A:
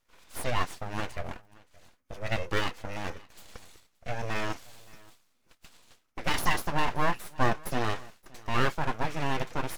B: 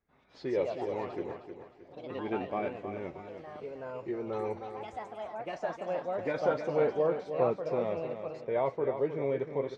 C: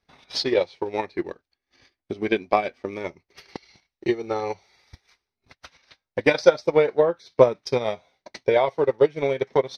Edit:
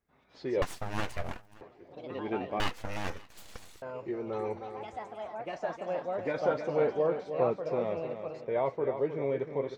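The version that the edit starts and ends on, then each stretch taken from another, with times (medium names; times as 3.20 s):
B
0.62–1.61 s: from A
2.60–3.82 s: from A
not used: C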